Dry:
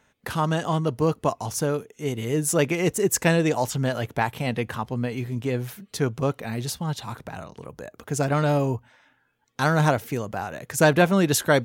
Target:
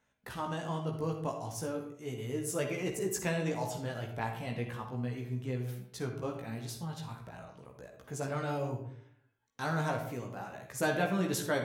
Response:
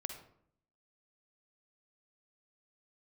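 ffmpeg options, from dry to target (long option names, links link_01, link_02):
-filter_complex "[1:a]atrim=start_sample=2205[link_01];[0:a][link_01]afir=irnorm=-1:irlink=0,flanger=delay=15.5:depth=2.4:speed=0.37,volume=-7.5dB"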